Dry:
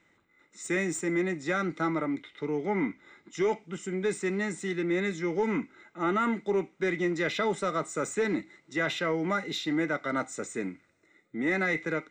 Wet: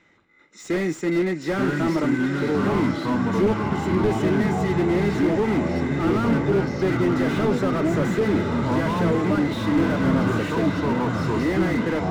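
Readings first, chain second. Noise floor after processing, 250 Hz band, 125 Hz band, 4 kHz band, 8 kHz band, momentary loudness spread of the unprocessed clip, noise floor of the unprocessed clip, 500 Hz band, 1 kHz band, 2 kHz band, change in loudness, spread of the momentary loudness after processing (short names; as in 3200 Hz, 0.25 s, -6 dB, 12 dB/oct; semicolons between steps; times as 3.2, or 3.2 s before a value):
-42 dBFS, +10.5 dB, +15.0 dB, +4.0 dB, n/a, 7 LU, -68 dBFS, +7.0 dB, +7.0 dB, +3.0 dB, +8.0 dB, 3 LU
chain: LPF 6500 Hz 24 dB/oct; echoes that change speed 0.65 s, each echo -5 st, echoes 3; diffused feedback echo 0.974 s, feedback 49%, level -8 dB; slew limiter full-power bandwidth 27 Hz; gain +7 dB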